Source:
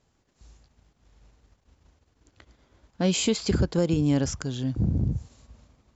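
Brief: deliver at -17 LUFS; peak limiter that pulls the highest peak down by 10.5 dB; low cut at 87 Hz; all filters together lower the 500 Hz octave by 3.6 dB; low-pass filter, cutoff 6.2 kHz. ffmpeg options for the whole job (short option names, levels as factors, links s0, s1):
-af "highpass=87,lowpass=6200,equalizer=f=500:t=o:g=-4.5,volume=6.31,alimiter=limit=0.422:level=0:latency=1"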